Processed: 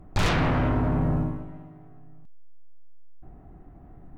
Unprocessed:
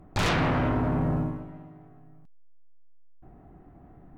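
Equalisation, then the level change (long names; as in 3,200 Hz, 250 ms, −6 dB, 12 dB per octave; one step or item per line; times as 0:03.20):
low-shelf EQ 73 Hz +9 dB
0.0 dB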